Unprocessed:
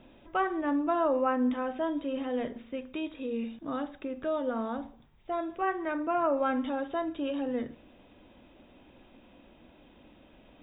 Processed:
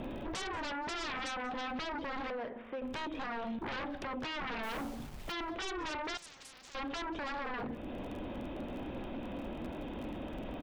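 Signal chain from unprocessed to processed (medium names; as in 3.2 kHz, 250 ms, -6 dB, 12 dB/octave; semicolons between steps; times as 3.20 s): crackle 35 per s -51 dBFS; treble shelf 2 kHz -10 dB; compression 3:1, threshold -46 dBFS, peak gain reduction 16 dB; 2.30–2.82 s: three-band isolator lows -16 dB, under 590 Hz, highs -19 dB, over 2.5 kHz; sine folder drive 18 dB, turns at -31 dBFS; 4.63–5.32 s: word length cut 8-bit, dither none; delay 185 ms -20.5 dB; 6.17–6.75 s: spectrum-flattening compressor 10:1; trim -4.5 dB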